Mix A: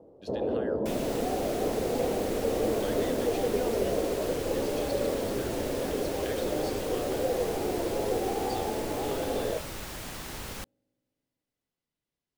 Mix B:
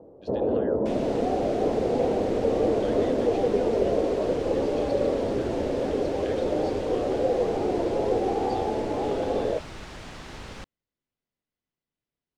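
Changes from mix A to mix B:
speech: send off; first sound +5.0 dB; master: add distance through air 99 m

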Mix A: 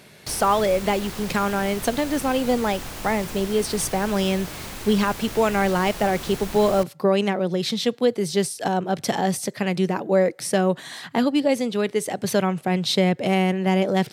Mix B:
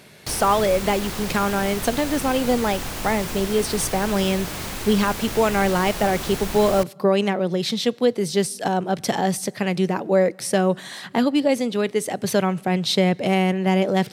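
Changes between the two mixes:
background +4.5 dB; reverb: on, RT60 2.2 s

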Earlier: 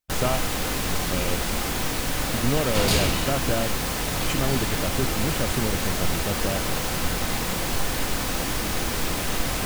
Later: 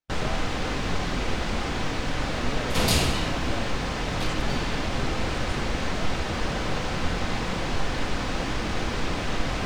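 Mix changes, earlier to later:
speech -11.0 dB; first sound: add distance through air 130 m

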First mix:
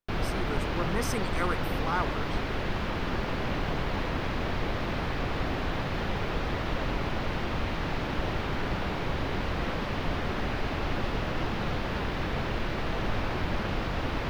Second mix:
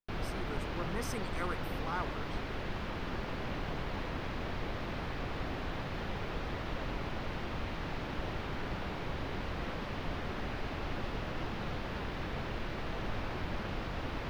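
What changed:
speech -7.5 dB; background -7.5 dB

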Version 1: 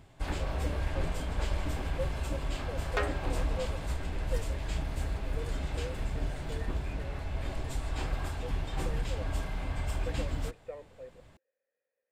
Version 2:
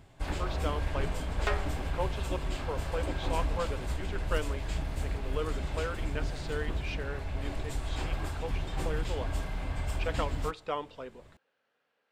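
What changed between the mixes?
speech: remove cascade formant filter e; second sound: entry -1.50 s

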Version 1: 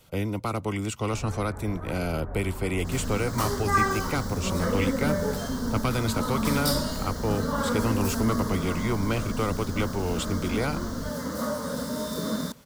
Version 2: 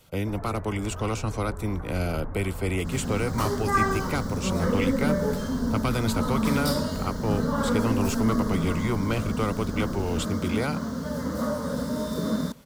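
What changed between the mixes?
first sound: entry -0.85 s; second sound: add tilt EQ -1.5 dB/octave

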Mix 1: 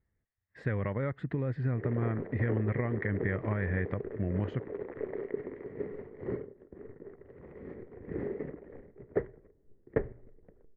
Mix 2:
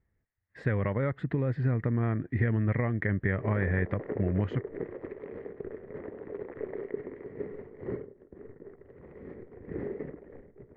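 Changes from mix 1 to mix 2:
speech +3.5 dB; background: entry +1.60 s

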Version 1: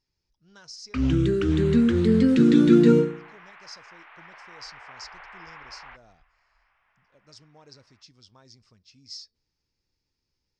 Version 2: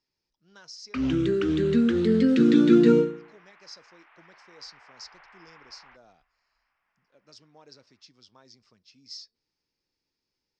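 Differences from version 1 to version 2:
second sound -8.5 dB; master: add three-band isolator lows -13 dB, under 180 Hz, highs -13 dB, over 7.2 kHz

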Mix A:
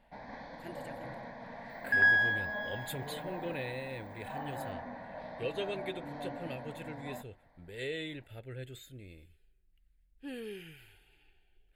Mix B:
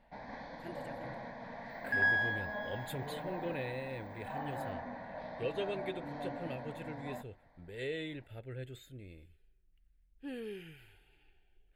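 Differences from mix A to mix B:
speech: add treble shelf 2.8 kHz -6.5 dB; second sound -5.0 dB

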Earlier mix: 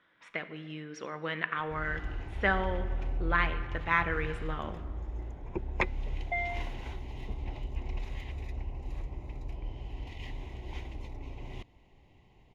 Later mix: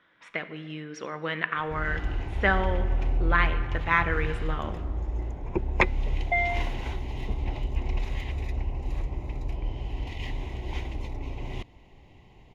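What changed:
speech +4.0 dB; background +7.5 dB

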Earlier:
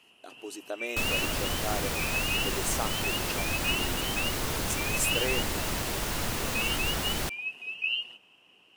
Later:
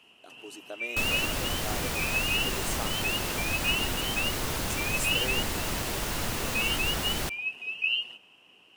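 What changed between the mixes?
speech -5.0 dB; first sound: send on

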